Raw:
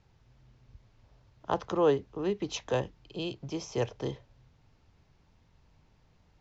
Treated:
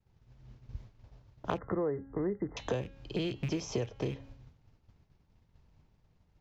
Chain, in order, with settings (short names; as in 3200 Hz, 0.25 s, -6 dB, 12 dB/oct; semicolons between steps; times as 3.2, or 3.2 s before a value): rattling part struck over -42 dBFS, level -35 dBFS; expander -53 dBFS; low shelf 470 Hz +6 dB; de-hum 272.9 Hz, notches 16; dynamic EQ 890 Hz, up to -6 dB, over -42 dBFS, Q 1.7; compressor 8:1, threshold -36 dBFS, peak gain reduction 18.5 dB; 1.58–2.57 brick-wall FIR low-pass 2100 Hz; gain +6 dB